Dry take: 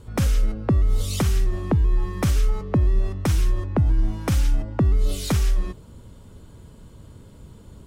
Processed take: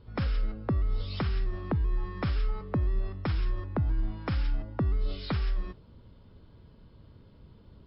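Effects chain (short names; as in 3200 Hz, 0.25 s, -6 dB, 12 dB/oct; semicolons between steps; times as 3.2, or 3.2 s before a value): dynamic EQ 1400 Hz, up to +5 dB, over -46 dBFS, Q 1.2; gain -8.5 dB; MP3 40 kbps 12000 Hz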